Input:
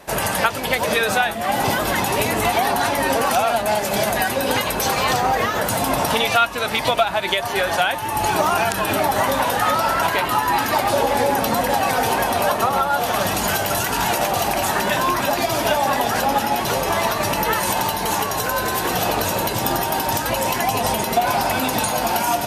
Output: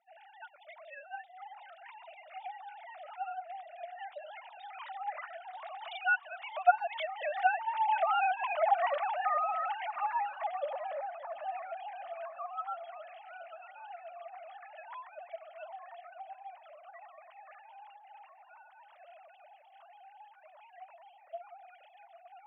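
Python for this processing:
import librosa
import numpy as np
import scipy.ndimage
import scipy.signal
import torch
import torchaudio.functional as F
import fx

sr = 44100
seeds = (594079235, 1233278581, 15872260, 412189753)

y = fx.sine_speech(x, sr)
y = fx.doppler_pass(y, sr, speed_mps=16, closest_m=13.0, pass_at_s=8.45)
y = scipy.signal.sosfilt(scipy.signal.butter(2, 210.0, 'highpass', fs=sr, output='sos'), y)
y = fx.notch(y, sr, hz=1600.0, q=18.0)
y = fx.echo_tape(y, sr, ms=696, feedback_pct=80, wet_db=-21.0, lp_hz=2300.0, drive_db=16.0, wow_cents=25)
y = F.gain(torch.from_numpy(y), -8.5).numpy()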